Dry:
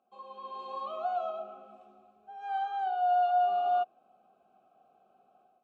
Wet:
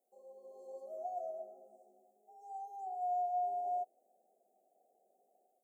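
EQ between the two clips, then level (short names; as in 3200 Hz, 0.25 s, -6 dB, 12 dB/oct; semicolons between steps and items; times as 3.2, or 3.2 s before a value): HPF 800 Hz 12 dB/oct; inverse Chebyshev band-stop 1100–3800 Hz, stop band 50 dB; +8.0 dB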